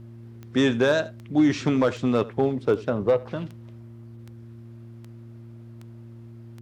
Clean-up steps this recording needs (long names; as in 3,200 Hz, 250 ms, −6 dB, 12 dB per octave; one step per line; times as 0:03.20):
clipped peaks rebuilt −12 dBFS
click removal
hum removal 115.5 Hz, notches 3
echo removal 82 ms −20 dB